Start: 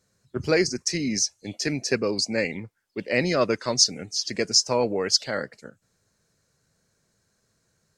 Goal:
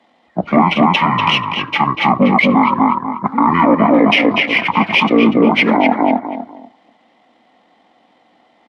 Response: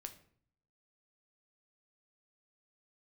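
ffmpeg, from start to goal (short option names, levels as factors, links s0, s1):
-filter_complex "[0:a]aeval=exprs='if(lt(val(0),0),0.708*val(0),val(0))':c=same,acrossover=split=490 4600:gain=0.112 1 0.158[s0][s1][s2];[s0][s1][s2]amix=inputs=3:normalize=0,asplit=2[s3][s4];[1:a]atrim=start_sample=2205,afade=t=out:st=0.35:d=0.01,atrim=end_sample=15876[s5];[s4][s5]afir=irnorm=-1:irlink=0,volume=0.316[s6];[s3][s6]amix=inputs=2:normalize=0,asetrate=40517,aresample=44100,equalizer=f=800:t=o:w=0.33:g=-4,equalizer=f=3150:t=o:w=0.33:g=-4,equalizer=f=5000:t=o:w=0.33:g=-9,asetrate=22696,aresample=44100,atempo=1.94306,highpass=200,asplit=2[s7][s8];[s8]adelay=243,lowpass=f=3000:p=1,volume=0.631,asplit=2[s9][s10];[s10]adelay=243,lowpass=f=3000:p=1,volume=0.25,asplit=2[s11][s12];[s12]adelay=243,lowpass=f=3000:p=1,volume=0.25[s13];[s7][s9][s11][s13]amix=inputs=4:normalize=0,alimiter=level_in=16.8:limit=0.891:release=50:level=0:latency=1,volume=0.891"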